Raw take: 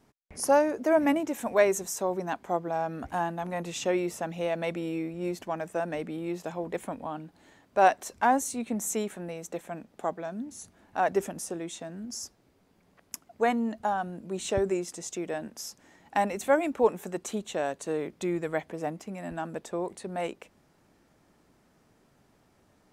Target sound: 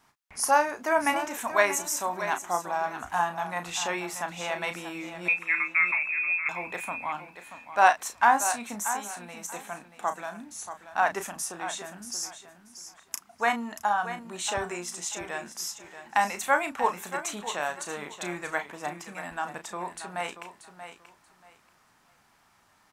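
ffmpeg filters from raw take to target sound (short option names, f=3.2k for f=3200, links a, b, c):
-filter_complex "[0:a]asplit=2[a][b];[b]adelay=34,volume=-8.5dB[c];[a][c]amix=inputs=2:normalize=0,asettb=1/sr,asplit=3[d][e][f];[d]atrim=end=5.284[g];[e]atrim=start=5.28:end=6.49,asetpts=PTS-STARTPTS,afade=t=in:d=0.004:c=qsin,afade=t=out:st=1.206:d=0.004:c=qsin,lowpass=f=2.4k:t=q:w=0.5098,lowpass=f=2.4k:t=q:w=0.6013,lowpass=f=2.4k:t=q:w=0.9,lowpass=f=2.4k:t=q:w=2.563,afreqshift=-2800[h];[f]atrim=start=6.486[i];[g][h]acrossfade=d=0.004:c1=hsin:c2=qsin[j];[j][i]acrossfade=d=0.004:c1=qsin:c2=hsin,asettb=1/sr,asplit=3[k][l][m];[k]atrim=end=8.814[n];[l]atrim=start=8.81:end=9.37,asetpts=PTS-STARTPTS,afade=t=in:d=0.004:c=qsin,afade=t=out:st=0.556:d=0.004:c=qsin,acompressor=threshold=-35dB:ratio=6[o];[m]atrim=start=9.366[p];[n][o]acrossfade=d=0.004:c1=hsin:c2=qsin[q];[q][p]acrossfade=d=0.004:c1=qsin:c2=hsin,lowshelf=f=700:t=q:w=1.5:g=-11.5,aecho=1:1:633|1266|1899:0.282|0.062|0.0136,volume=4.5dB"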